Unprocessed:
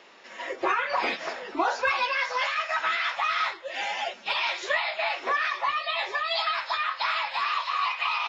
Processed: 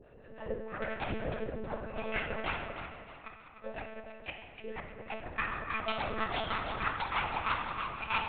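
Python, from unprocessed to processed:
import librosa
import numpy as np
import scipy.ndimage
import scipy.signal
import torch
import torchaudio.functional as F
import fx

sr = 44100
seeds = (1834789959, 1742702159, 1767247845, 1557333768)

y = fx.wiener(x, sr, points=41)
y = fx.lowpass(y, sr, hz=2600.0, slope=6)
y = fx.peak_eq(y, sr, hz=60.0, db=14.5, octaves=1.6)
y = fx.over_compress(y, sr, threshold_db=-36.0, ratio=-0.5)
y = fx.gate_flip(y, sr, shuts_db=-27.0, range_db=-27, at=(2.62, 5.1), fade=0.02)
y = (np.mod(10.0 ** (20.5 / 20.0) * y + 1.0, 2.0) - 1.0) / 10.0 ** (20.5 / 20.0)
y = fx.harmonic_tremolo(y, sr, hz=6.2, depth_pct=100, crossover_hz=590.0)
y = fx.echo_feedback(y, sr, ms=312, feedback_pct=38, wet_db=-10.0)
y = fx.rev_fdn(y, sr, rt60_s=1.6, lf_ratio=1.35, hf_ratio=0.65, size_ms=34.0, drr_db=0.0)
y = fx.lpc_monotone(y, sr, seeds[0], pitch_hz=220.0, order=10)
y = fx.attack_slew(y, sr, db_per_s=520.0)
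y = y * librosa.db_to_amplitude(4.0)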